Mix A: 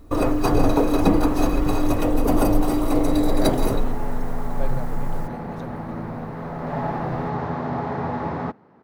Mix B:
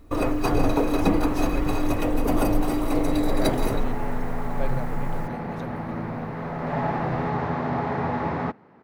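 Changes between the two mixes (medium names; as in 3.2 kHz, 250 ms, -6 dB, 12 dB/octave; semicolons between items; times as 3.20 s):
first sound -3.5 dB; master: add peaking EQ 2.3 kHz +5 dB 0.96 oct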